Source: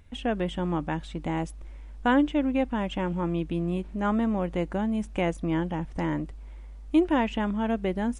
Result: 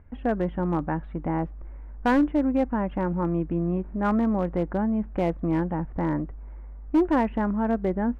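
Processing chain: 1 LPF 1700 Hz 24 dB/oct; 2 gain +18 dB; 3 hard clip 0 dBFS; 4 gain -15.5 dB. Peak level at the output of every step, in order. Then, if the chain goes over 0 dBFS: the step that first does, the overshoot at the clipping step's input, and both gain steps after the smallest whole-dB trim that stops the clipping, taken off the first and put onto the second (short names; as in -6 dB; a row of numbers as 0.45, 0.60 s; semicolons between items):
-11.5, +6.5, 0.0, -15.5 dBFS; step 2, 6.5 dB; step 2 +11 dB, step 4 -8.5 dB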